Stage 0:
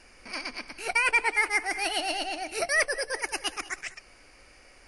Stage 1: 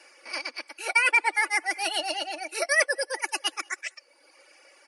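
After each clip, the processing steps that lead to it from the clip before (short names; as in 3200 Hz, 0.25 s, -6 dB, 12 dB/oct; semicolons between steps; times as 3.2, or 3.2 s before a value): reverb removal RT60 1 s; steep high-pass 350 Hz 36 dB/oct; comb 3.5 ms, depth 56%; gain +1.5 dB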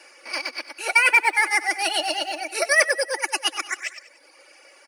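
in parallel at -7.5 dB: short-mantissa float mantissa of 2-bit; on the sum: feedback echo 96 ms, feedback 47%, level -14.5 dB; gain +1.5 dB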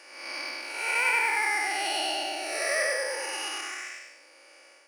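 time blur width 0.287 s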